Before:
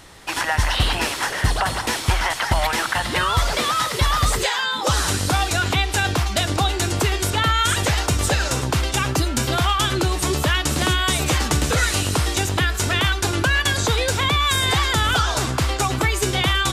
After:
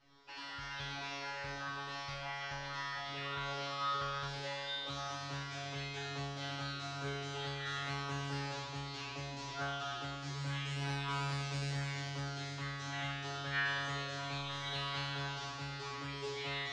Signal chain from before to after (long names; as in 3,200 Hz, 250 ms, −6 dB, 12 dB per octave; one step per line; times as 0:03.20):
Butterworth low-pass 5,600 Hz 36 dB per octave
parametric band 160 Hz −3 dB 1.5 octaves
in parallel at −2.5 dB: brickwall limiter −15 dBFS, peak gain reduction 6 dB
on the sum: soft clipping −4 dBFS, distortion −29 dB
tuned comb filter 140 Hz, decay 1.7 s, mix 100%
highs frequency-modulated by the lows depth 0.54 ms
level −4 dB